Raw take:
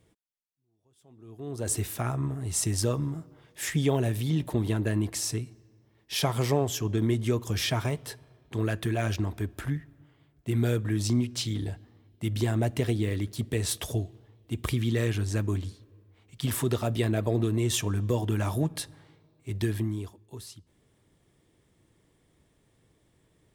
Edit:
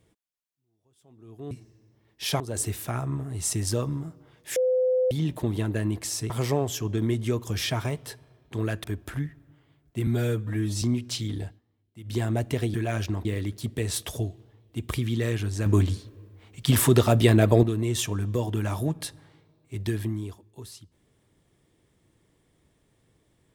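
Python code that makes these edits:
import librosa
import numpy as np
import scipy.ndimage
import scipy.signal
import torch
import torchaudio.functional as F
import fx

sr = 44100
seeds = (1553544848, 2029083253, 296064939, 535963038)

y = fx.edit(x, sr, fx.bleep(start_s=3.67, length_s=0.55, hz=510.0, db=-19.5),
    fx.move(start_s=5.41, length_s=0.89, to_s=1.51),
    fx.move(start_s=8.84, length_s=0.51, to_s=13.0),
    fx.stretch_span(start_s=10.58, length_s=0.5, factor=1.5),
    fx.fade_down_up(start_s=11.72, length_s=0.72, db=-14.5, fade_s=0.15),
    fx.clip_gain(start_s=15.41, length_s=1.97, db=8.5), tone=tone)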